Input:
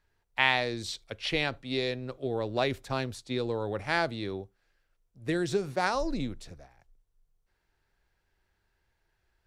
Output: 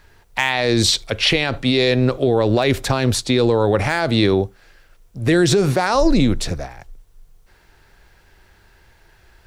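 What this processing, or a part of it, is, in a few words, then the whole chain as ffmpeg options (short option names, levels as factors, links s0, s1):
loud club master: -af "acompressor=threshold=0.0316:ratio=2.5,asoftclip=type=hard:threshold=0.106,alimiter=level_in=26.6:limit=0.891:release=50:level=0:latency=1,volume=0.531"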